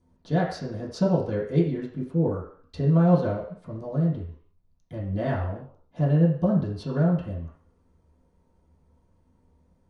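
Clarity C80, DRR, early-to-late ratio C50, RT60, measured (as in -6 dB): 9.0 dB, -11.0 dB, 5.5 dB, 0.55 s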